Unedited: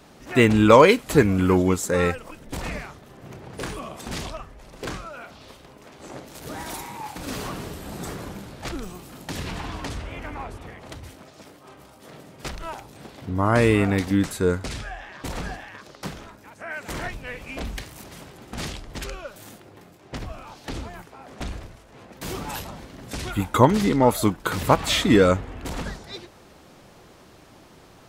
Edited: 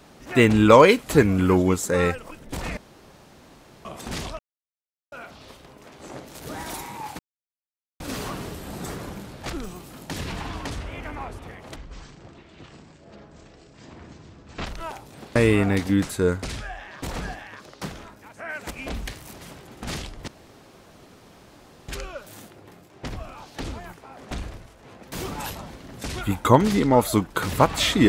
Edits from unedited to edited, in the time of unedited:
0:02.77–0:03.85: fill with room tone
0:04.39–0:05.12: silence
0:07.19: splice in silence 0.81 s
0:10.95–0:12.49: play speed 53%
0:13.18–0:13.57: remove
0:16.92–0:17.41: remove
0:18.98: splice in room tone 1.61 s

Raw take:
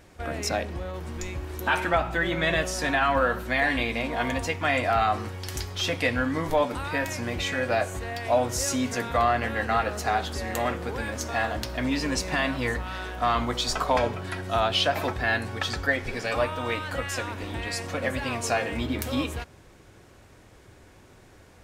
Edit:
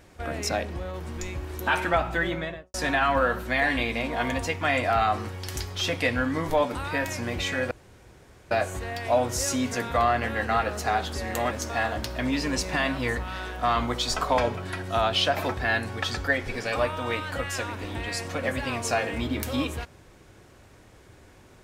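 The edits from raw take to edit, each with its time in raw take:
0:02.18–0:02.74: fade out and dull
0:07.71: splice in room tone 0.80 s
0:10.71–0:11.10: remove

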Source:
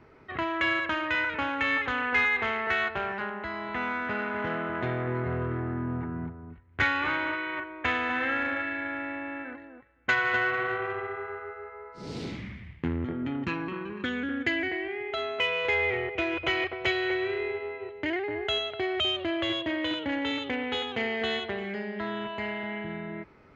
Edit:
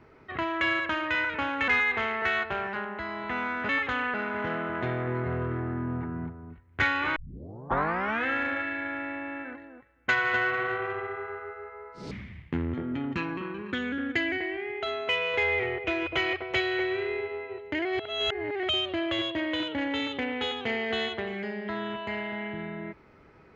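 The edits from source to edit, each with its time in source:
0:01.68–0:02.13: move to 0:04.14
0:07.16: tape start 1.10 s
0:12.11–0:12.42: remove
0:18.16–0:18.94: reverse

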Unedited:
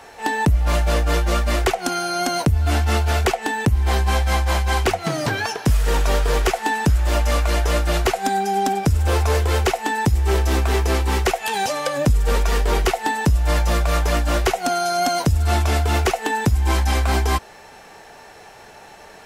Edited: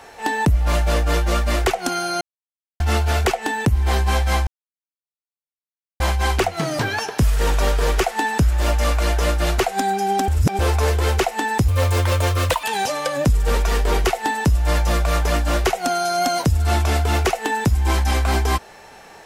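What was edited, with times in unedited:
0:02.21–0:02.80: silence
0:04.47: splice in silence 1.53 s
0:08.75–0:09.06: reverse
0:10.15–0:11.44: play speed 135%

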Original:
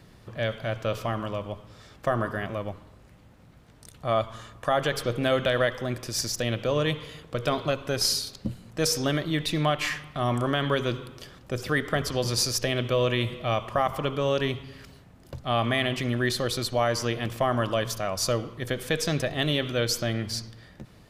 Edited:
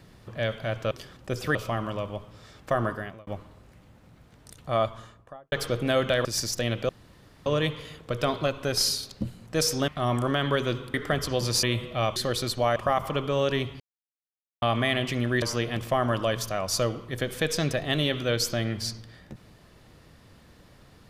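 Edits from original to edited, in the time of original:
0:02.23–0:02.63: fade out
0:04.14–0:04.88: fade out and dull
0:05.61–0:06.06: remove
0:06.70: splice in room tone 0.57 s
0:09.12–0:10.07: remove
0:11.13–0:11.77: move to 0:00.91
0:12.46–0:13.12: remove
0:14.69–0:15.51: silence
0:16.31–0:16.91: move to 0:13.65

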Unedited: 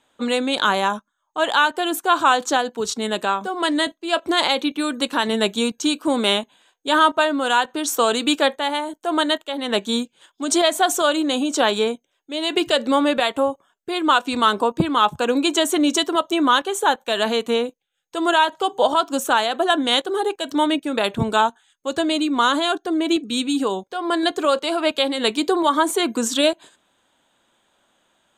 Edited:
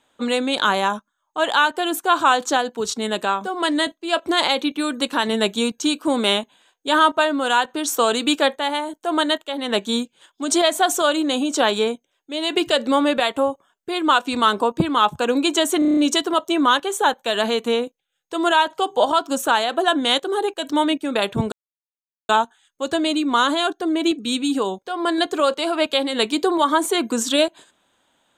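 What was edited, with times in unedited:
0:15.79: stutter 0.03 s, 7 plays
0:21.34: splice in silence 0.77 s

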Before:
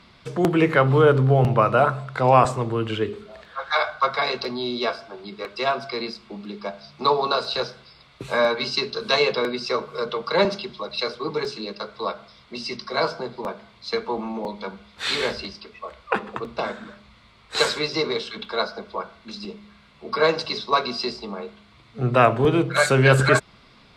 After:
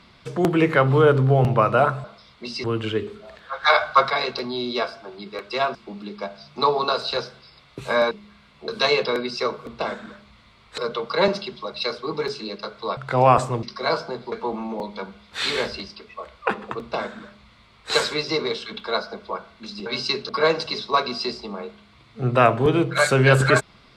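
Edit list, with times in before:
0:02.04–0:02.70: swap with 0:12.14–0:12.74
0:03.69–0:04.16: clip gain +5 dB
0:05.81–0:06.18: remove
0:08.54–0:08.97: swap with 0:19.51–0:20.08
0:13.43–0:13.97: remove
0:16.44–0:17.56: duplicate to 0:09.95

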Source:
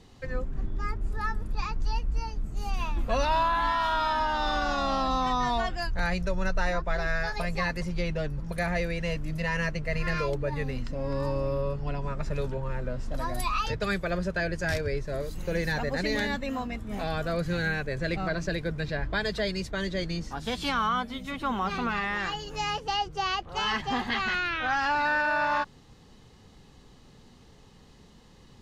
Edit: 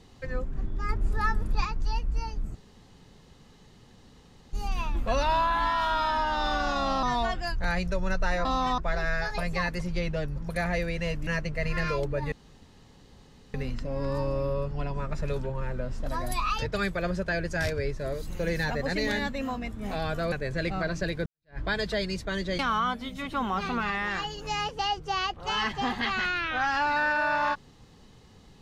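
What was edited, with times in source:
0:00.89–0:01.65: clip gain +4 dB
0:02.55: splice in room tone 1.98 s
0:05.05–0:05.38: move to 0:06.80
0:09.29–0:09.57: remove
0:10.62: splice in room tone 1.22 s
0:17.40–0:17.78: remove
0:18.72–0:19.05: fade in exponential
0:20.05–0:20.68: remove

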